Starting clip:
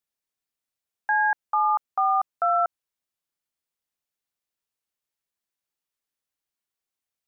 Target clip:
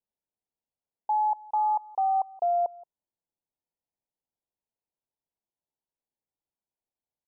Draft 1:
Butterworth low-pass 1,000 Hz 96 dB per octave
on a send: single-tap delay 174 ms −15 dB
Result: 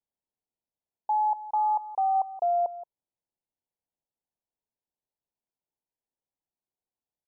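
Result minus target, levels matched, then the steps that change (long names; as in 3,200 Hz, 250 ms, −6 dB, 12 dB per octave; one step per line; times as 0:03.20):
echo-to-direct +7 dB
change: single-tap delay 174 ms −22 dB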